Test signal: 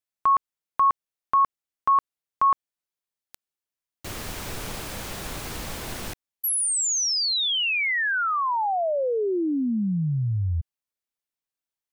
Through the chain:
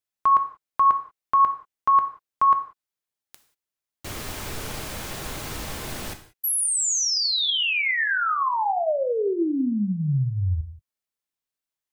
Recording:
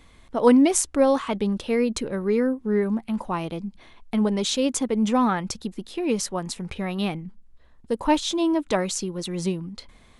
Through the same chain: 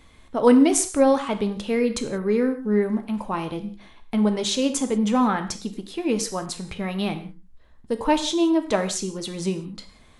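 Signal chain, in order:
reverb whose tail is shaped and stops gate 210 ms falling, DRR 7 dB

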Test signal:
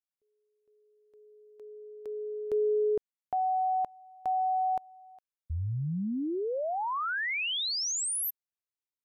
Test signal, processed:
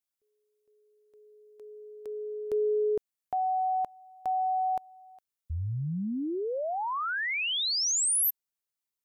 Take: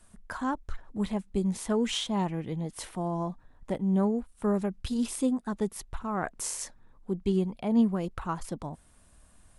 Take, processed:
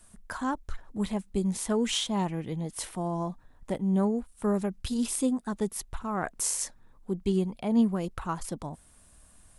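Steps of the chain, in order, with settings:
high-shelf EQ 5,300 Hz +7 dB

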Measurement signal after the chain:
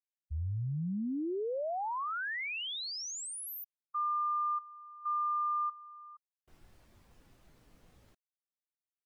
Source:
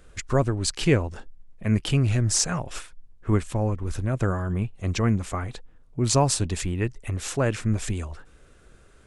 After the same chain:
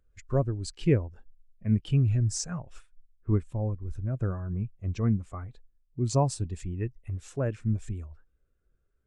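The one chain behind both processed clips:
every bin expanded away from the loudest bin 1.5 to 1
level −6.5 dB

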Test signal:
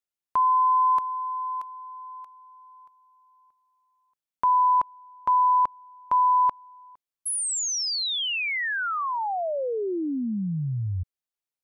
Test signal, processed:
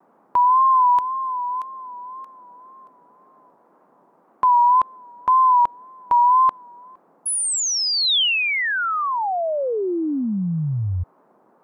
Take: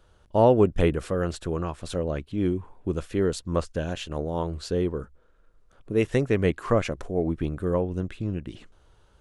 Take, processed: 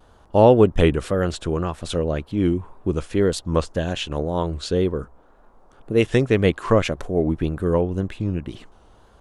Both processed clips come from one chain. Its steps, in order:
noise in a band 180–1,100 Hz −63 dBFS
dynamic equaliser 3,400 Hz, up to +5 dB, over −48 dBFS, Q 2.3
pitch vibrato 1.9 Hz 69 cents
level +5 dB

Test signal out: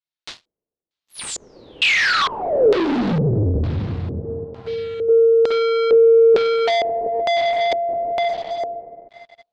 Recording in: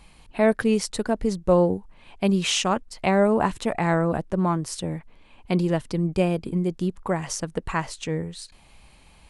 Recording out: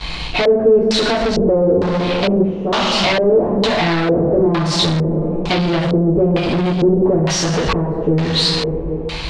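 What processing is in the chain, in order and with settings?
Chebyshev low-pass filter 9,400 Hz, order 6
coupled-rooms reverb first 0.56 s, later 2.8 s, from −17 dB, DRR −8.5 dB
downward compressor 12 to 1, threshold −24 dBFS
leveller curve on the samples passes 5
auto-filter low-pass square 1.1 Hz 450–4,100 Hz

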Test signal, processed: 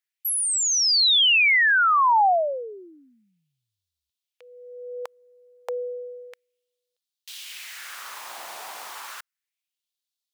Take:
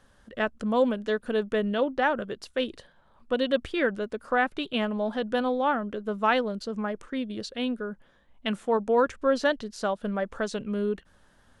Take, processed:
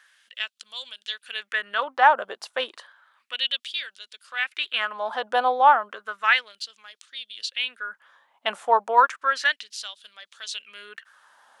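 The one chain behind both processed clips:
auto-filter high-pass sine 0.32 Hz 780–3,800 Hz
level +4.5 dB

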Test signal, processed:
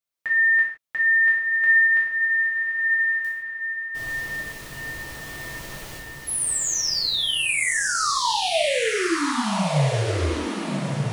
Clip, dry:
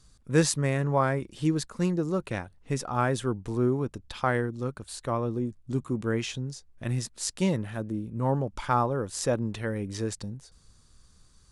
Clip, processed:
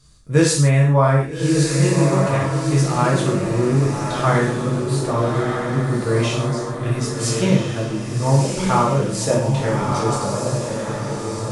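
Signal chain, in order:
feedback delay with all-pass diffusion 1,254 ms, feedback 43%, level −3 dB
reverb whose tail is shaped and stops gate 190 ms falling, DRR −4.5 dB
level +2 dB

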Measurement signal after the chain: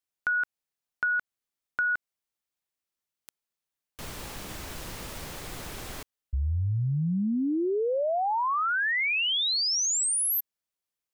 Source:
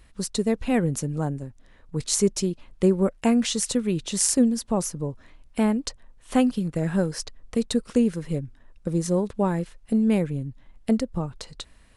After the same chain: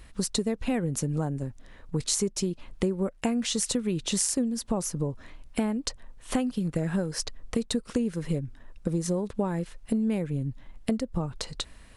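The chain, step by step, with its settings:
downward compressor 6 to 1, threshold −29 dBFS
level +4.5 dB

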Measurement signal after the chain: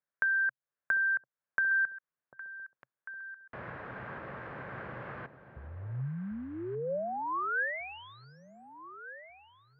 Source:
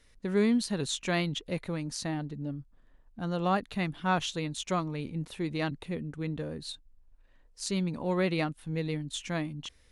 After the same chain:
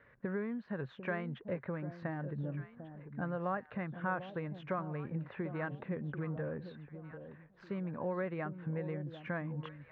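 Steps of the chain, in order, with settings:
downward compressor 6 to 1, threshold −40 dBFS
loudspeaker in its box 120–2,000 Hz, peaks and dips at 130 Hz +6 dB, 280 Hz −5 dB, 560 Hz +5 dB, 1,100 Hz +4 dB, 1,600 Hz +8 dB
delay that swaps between a low-pass and a high-pass 746 ms, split 800 Hz, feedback 54%, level −10 dB
level +4 dB

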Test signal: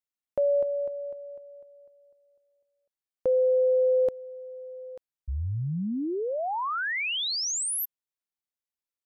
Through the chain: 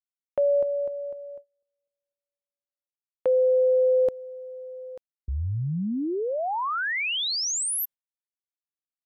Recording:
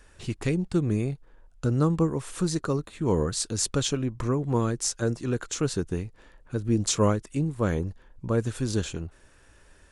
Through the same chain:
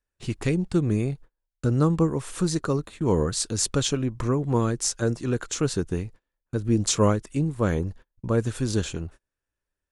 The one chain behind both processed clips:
noise gate −43 dBFS, range −33 dB
level +2 dB

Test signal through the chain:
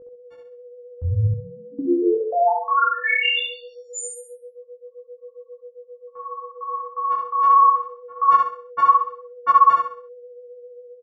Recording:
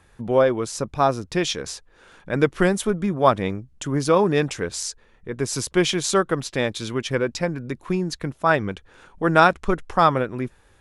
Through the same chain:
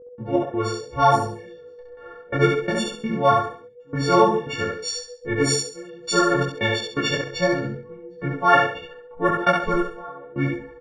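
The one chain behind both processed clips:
every partial snapped to a pitch grid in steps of 4 semitones
in parallel at 0 dB: downward compressor, threshold −29 dBFS
on the sum: noise gate with hold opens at −35 dBFS
gate pattern ".x.x.xx...xx" 84 BPM −24 dB
low-pass filter 9,000 Hz 12 dB per octave
high-shelf EQ 5,700 Hz −9 dB
steady tone 490 Hz −36 dBFS
automatic gain control gain up to 4 dB
low-pass that shuts in the quiet parts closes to 970 Hz, open at −11.5 dBFS
hum removal 218.3 Hz, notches 3
on a send: repeating echo 66 ms, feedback 36%, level −3 dB
on the sum: micro pitch shift up and down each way 26 cents

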